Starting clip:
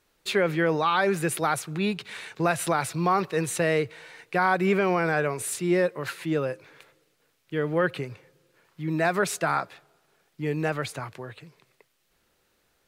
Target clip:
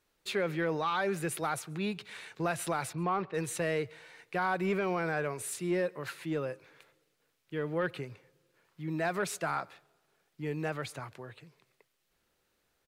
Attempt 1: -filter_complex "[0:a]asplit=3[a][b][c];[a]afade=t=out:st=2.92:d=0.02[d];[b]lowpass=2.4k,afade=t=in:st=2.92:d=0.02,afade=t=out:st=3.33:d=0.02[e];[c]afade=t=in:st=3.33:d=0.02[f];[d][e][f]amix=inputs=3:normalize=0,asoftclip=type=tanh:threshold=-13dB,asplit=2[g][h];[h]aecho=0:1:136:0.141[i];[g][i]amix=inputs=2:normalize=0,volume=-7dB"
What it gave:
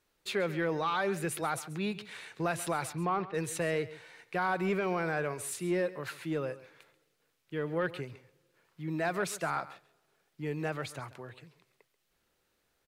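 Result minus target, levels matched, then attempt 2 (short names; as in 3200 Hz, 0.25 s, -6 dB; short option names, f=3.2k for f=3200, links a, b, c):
echo-to-direct +11.5 dB
-filter_complex "[0:a]asplit=3[a][b][c];[a]afade=t=out:st=2.92:d=0.02[d];[b]lowpass=2.4k,afade=t=in:st=2.92:d=0.02,afade=t=out:st=3.33:d=0.02[e];[c]afade=t=in:st=3.33:d=0.02[f];[d][e][f]amix=inputs=3:normalize=0,asoftclip=type=tanh:threshold=-13dB,asplit=2[g][h];[h]aecho=0:1:136:0.0376[i];[g][i]amix=inputs=2:normalize=0,volume=-7dB"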